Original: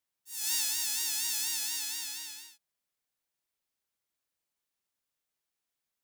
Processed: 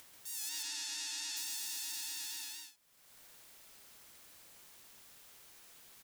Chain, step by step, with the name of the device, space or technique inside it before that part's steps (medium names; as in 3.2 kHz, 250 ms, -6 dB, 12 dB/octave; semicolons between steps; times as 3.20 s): 0.49–1.37 s: low-pass 6.4 kHz 12 dB/octave; loudspeakers at several distances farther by 46 m -1 dB, 64 m -12 dB; upward and downward compression (upward compressor, threshold -37 dBFS; compression 6:1, threshold -37 dBFS, peak gain reduction 10.5 dB)